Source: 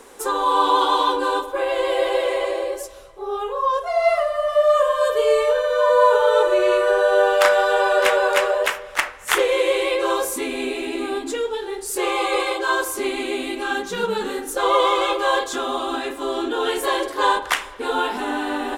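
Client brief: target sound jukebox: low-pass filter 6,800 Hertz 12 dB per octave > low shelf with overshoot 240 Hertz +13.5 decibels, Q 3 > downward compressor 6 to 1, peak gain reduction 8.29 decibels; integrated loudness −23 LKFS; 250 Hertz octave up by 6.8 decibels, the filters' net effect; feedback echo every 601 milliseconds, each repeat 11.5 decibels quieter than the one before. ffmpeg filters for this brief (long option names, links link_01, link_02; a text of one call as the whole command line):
ffmpeg -i in.wav -af "lowpass=6800,lowshelf=frequency=240:width_type=q:width=3:gain=13.5,equalizer=frequency=250:width_type=o:gain=7.5,aecho=1:1:601|1202|1803:0.266|0.0718|0.0194,acompressor=threshold=-19dB:ratio=6,volume=1dB" out.wav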